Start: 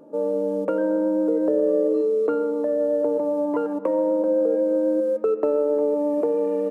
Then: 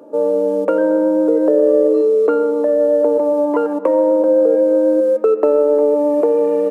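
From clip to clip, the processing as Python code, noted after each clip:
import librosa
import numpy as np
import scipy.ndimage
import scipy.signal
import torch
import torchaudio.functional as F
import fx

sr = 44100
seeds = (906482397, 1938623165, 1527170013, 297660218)

y = scipy.signal.sosfilt(scipy.signal.butter(2, 290.0, 'highpass', fs=sr, output='sos'), x)
y = y * 10.0 ** (8.5 / 20.0)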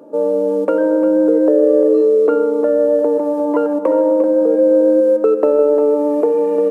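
y = fx.low_shelf(x, sr, hz=150.0, db=9.0)
y = y + 10.0 ** (-10.5 / 20.0) * np.pad(y, (int(350 * sr / 1000.0), 0))[:len(y)]
y = y * 10.0 ** (-1.0 / 20.0)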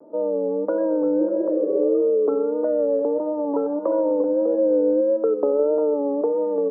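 y = fx.spec_repair(x, sr, seeds[0], start_s=1.23, length_s=0.54, low_hz=320.0, high_hz=830.0, source='both')
y = scipy.signal.sosfilt(scipy.signal.butter(4, 1200.0, 'lowpass', fs=sr, output='sos'), y)
y = fx.vibrato(y, sr, rate_hz=1.6, depth_cents=72.0)
y = y * 10.0 ** (-7.0 / 20.0)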